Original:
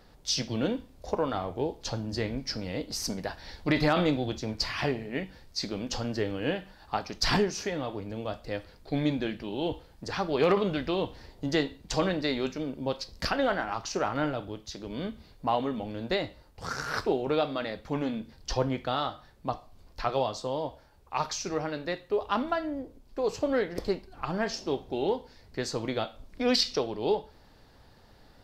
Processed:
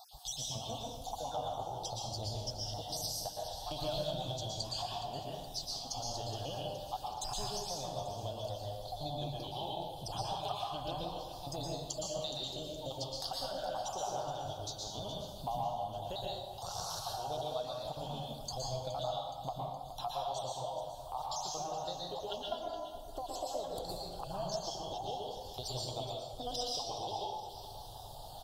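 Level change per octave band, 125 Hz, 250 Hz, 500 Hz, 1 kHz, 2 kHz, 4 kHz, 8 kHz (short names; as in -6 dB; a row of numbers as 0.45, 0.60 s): -7.5, -17.5, -10.0, -4.5, -22.0, -4.5, -2.0 dB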